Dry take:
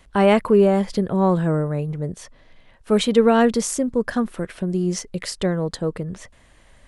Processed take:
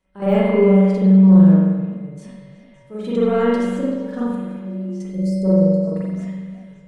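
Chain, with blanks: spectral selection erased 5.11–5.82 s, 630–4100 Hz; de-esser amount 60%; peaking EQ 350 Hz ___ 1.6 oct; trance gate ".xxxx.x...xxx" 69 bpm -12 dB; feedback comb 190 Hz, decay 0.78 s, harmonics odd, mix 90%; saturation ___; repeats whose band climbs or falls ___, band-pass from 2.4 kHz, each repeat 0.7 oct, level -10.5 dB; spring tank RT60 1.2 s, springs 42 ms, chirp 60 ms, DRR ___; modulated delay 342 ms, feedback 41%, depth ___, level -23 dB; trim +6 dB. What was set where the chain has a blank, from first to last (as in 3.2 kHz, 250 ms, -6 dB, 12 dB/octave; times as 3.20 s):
+6.5 dB, -20.5 dBFS, 189 ms, -8 dB, 173 cents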